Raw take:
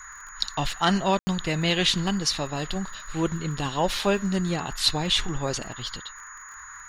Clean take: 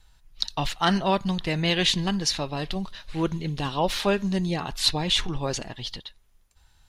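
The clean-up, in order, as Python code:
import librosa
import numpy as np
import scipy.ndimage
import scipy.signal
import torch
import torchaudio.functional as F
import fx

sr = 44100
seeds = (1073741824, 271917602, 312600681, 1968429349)

y = fx.fix_declick_ar(x, sr, threshold=6.5)
y = fx.notch(y, sr, hz=6800.0, q=30.0)
y = fx.fix_ambience(y, sr, seeds[0], print_start_s=6.13, print_end_s=6.63, start_s=1.19, end_s=1.27)
y = fx.noise_reduce(y, sr, print_start_s=6.13, print_end_s=6.63, reduce_db=14.0)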